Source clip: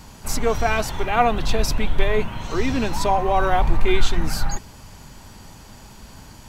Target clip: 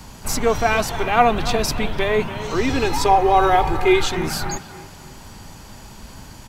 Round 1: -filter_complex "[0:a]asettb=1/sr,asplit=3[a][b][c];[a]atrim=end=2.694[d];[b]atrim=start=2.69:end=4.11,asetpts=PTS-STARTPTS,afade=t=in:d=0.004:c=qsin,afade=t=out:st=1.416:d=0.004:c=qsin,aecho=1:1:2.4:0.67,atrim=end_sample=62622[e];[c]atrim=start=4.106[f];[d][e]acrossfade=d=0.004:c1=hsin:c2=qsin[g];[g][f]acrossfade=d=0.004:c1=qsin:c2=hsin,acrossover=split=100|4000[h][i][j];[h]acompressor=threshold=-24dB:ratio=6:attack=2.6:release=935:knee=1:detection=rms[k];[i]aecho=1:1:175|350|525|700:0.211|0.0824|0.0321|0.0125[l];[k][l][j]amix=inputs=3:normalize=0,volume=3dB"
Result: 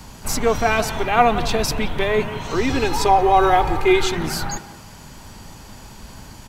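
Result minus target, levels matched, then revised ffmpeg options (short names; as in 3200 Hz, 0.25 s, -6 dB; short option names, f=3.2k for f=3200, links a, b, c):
echo 0.115 s early
-filter_complex "[0:a]asettb=1/sr,asplit=3[a][b][c];[a]atrim=end=2.694[d];[b]atrim=start=2.69:end=4.11,asetpts=PTS-STARTPTS,afade=t=in:d=0.004:c=qsin,afade=t=out:st=1.416:d=0.004:c=qsin,aecho=1:1:2.4:0.67,atrim=end_sample=62622[e];[c]atrim=start=4.106[f];[d][e]acrossfade=d=0.004:c1=hsin:c2=qsin[g];[g][f]acrossfade=d=0.004:c1=qsin:c2=hsin,acrossover=split=100|4000[h][i][j];[h]acompressor=threshold=-24dB:ratio=6:attack=2.6:release=935:knee=1:detection=rms[k];[i]aecho=1:1:290|580|870|1160:0.211|0.0824|0.0321|0.0125[l];[k][l][j]amix=inputs=3:normalize=0,volume=3dB"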